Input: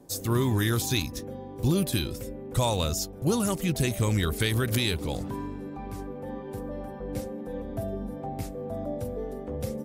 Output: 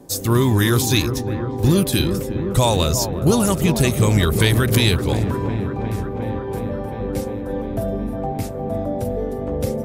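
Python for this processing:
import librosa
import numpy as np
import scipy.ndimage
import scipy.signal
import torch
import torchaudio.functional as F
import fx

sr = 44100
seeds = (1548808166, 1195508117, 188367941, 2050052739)

y = fx.echo_wet_lowpass(x, sr, ms=357, feedback_pct=78, hz=1300.0, wet_db=-8.5)
y = fx.end_taper(y, sr, db_per_s=260.0)
y = y * 10.0 ** (8.5 / 20.0)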